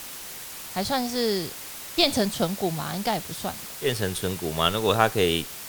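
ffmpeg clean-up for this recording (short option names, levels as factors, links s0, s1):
-af "afwtdn=0.013"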